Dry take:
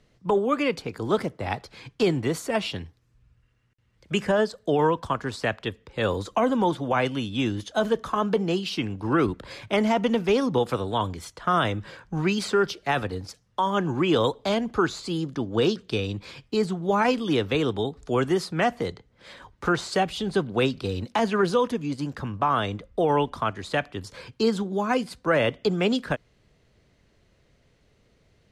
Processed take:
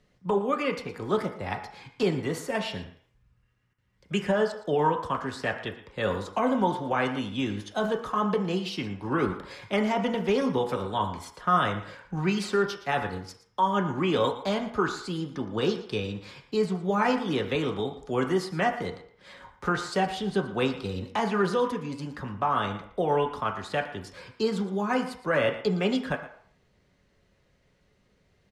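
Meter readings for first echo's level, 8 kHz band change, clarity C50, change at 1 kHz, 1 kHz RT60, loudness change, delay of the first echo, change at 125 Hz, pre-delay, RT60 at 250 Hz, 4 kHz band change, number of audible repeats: -15.0 dB, -4.5 dB, 9.0 dB, -1.5 dB, 0.65 s, -2.5 dB, 0.116 s, -3.0 dB, 3 ms, 0.40 s, -4.0 dB, 1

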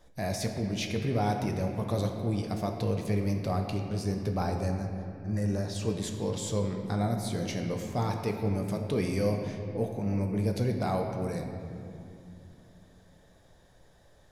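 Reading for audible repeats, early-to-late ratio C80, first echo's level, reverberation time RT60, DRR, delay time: none, 5.5 dB, none, 2.7 s, 3.0 dB, none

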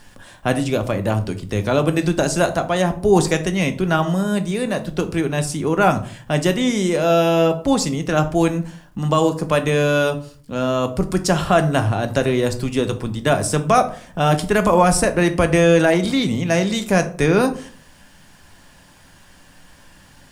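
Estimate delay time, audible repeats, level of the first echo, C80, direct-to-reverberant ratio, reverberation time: none, none, none, 19.0 dB, 7.0 dB, 0.45 s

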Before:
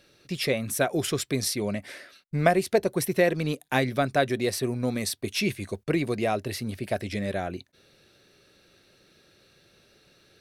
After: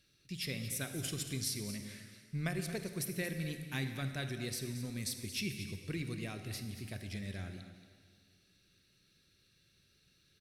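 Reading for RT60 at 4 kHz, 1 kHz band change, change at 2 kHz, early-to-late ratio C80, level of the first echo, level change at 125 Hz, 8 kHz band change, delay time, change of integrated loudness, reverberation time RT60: 1.8 s, -22.5 dB, -12.5 dB, 7.5 dB, -12.5 dB, -8.0 dB, -7.5 dB, 0.228 s, -12.5 dB, 1.9 s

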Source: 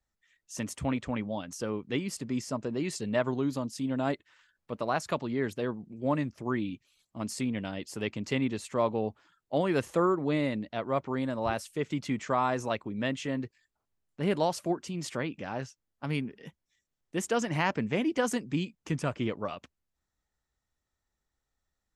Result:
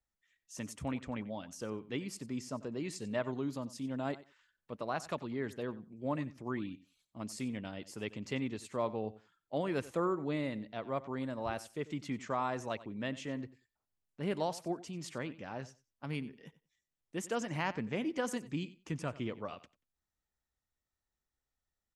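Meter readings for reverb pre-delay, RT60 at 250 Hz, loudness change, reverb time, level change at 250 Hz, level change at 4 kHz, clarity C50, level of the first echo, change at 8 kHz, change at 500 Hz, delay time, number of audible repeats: none, none, -7.0 dB, none, -7.0 dB, -7.0 dB, none, -17.5 dB, -7.0 dB, -7.0 dB, 92 ms, 2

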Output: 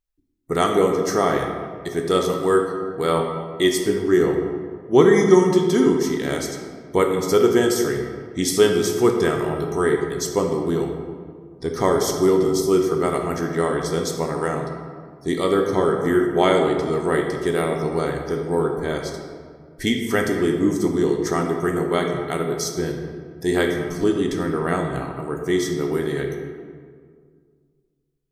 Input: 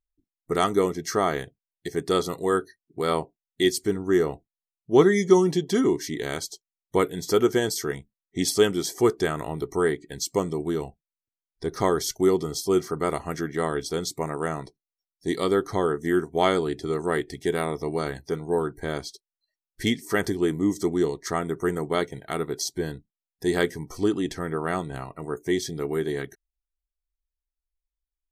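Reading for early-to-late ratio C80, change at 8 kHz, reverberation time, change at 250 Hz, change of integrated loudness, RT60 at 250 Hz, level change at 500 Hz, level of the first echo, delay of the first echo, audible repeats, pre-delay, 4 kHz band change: 6.0 dB, +3.0 dB, 1.9 s, +5.0 dB, +5.0 dB, 2.4 s, +5.5 dB, none, none, none, 9 ms, +3.0 dB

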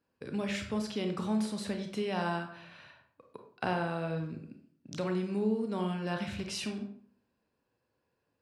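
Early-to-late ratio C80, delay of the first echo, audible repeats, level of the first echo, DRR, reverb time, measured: 11.0 dB, none, none, none, 4.5 dB, 0.55 s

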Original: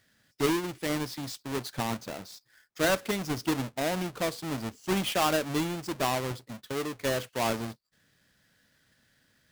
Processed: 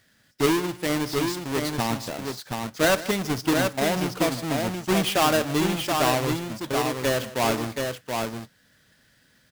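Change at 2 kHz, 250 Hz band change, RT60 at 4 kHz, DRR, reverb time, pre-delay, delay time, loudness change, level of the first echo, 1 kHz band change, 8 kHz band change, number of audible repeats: +6.5 dB, +6.5 dB, none, none, none, none, 56 ms, +6.0 dB, -19.5 dB, +6.5 dB, +6.5 dB, 3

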